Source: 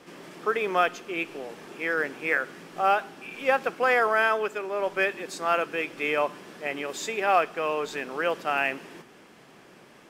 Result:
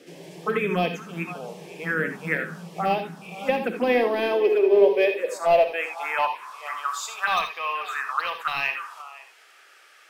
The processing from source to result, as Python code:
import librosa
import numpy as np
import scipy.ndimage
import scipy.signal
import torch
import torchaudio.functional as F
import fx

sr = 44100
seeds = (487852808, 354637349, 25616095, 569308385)

p1 = x + 10.0 ** (-18.5 / 20.0) * np.pad(x, (int(518 * sr / 1000.0), 0))[:len(x)]
p2 = fx.filter_sweep_highpass(p1, sr, from_hz=170.0, to_hz=1200.0, start_s=3.25, end_s=6.72, q=6.4)
p3 = 10.0 ** (-14.5 / 20.0) * (np.abs((p2 / 10.0 ** (-14.5 / 20.0) + 3.0) % 4.0 - 2.0) - 1.0)
p4 = p2 + (p3 * librosa.db_to_amplitude(-10.0))
p5 = fx.env_phaser(p4, sr, low_hz=160.0, high_hz=1400.0, full_db=-16.5)
y = fx.rev_gated(p5, sr, seeds[0], gate_ms=100, shape='rising', drr_db=6.5)